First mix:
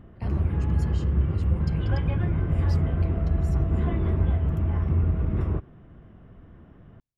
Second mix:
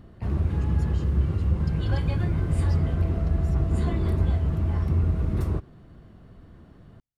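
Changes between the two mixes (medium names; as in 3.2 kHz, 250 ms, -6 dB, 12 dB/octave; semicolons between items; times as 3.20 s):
speech -3.0 dB; background: remove Savitzky-Golay filter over 25 samples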